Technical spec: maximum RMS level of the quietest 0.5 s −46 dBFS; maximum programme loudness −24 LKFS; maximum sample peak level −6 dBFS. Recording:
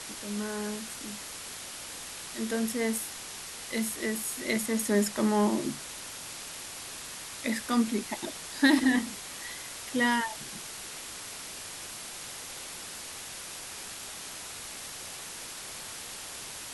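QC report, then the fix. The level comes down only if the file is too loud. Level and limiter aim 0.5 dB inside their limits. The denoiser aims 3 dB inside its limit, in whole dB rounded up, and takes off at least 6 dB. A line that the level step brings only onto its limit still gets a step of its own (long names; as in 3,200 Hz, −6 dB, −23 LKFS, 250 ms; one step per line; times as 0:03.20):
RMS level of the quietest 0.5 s −42 dBFS: out of spec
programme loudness −32.5 LKFS: in spec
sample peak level −11.0 dBFS: in spec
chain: broadband denoise 7 dB, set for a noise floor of −42 dBFS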